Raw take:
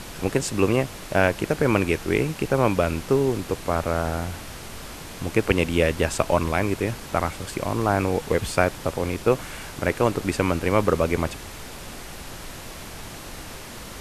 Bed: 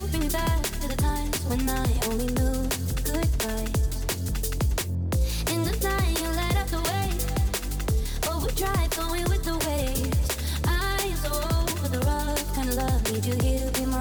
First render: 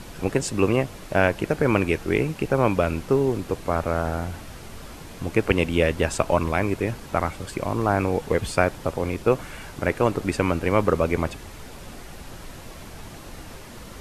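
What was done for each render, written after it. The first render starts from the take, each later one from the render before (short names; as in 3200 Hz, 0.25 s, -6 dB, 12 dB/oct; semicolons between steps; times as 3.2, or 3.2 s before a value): denoiser 6 dB, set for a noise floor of -38 dBFS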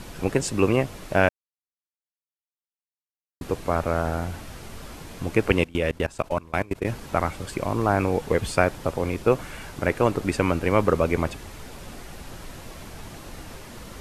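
1.29–3.41 mute; 5.64–6.85 level quantiser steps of 23 dB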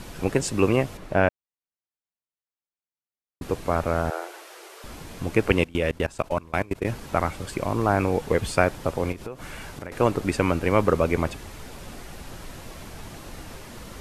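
0.97–3.42 high shelf 3100 Hz -11.5 dB; 4.1–4.84 Chebyshev high-pass 340 Hz, order 6; 9.12–9.92 compressor 10:1, threshold -31 dBFS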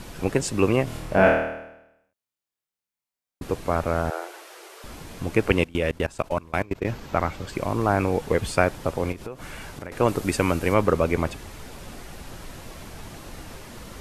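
0.84–3.44 flutter echo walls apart 4.4 m, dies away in 0.86 s; 6.62–7.55 bell 9800 Hz -12.5 dB 0.53 oct; 10.08–10.74 high shelf 5900 Hz +9 dB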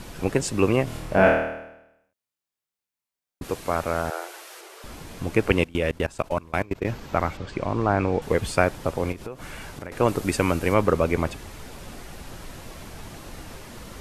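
3.44–4.61 tilt +1.5 dB/oct; 7.37–8.22 air absorption 100 m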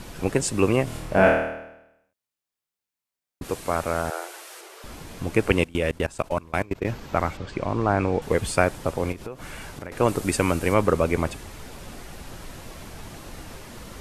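dynamic EQ 8800 Hz, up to +5 dB, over -51 dBFS, Q 1.6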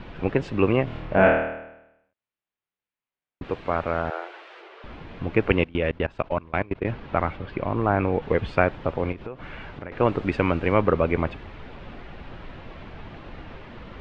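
LPF 3200 Hz 24 dB/oct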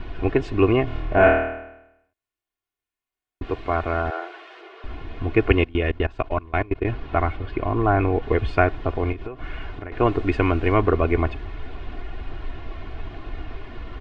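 low shelf 89 Hz +8.5 dB; comb 2.8 ms, depth 67%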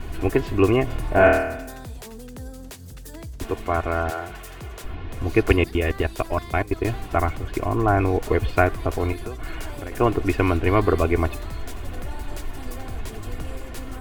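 add bed -12.5 dB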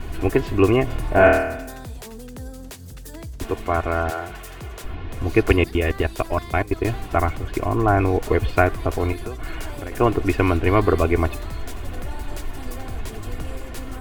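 gain +1.5 dB; limiter -2 dBFS, peak gain reduction 1 dB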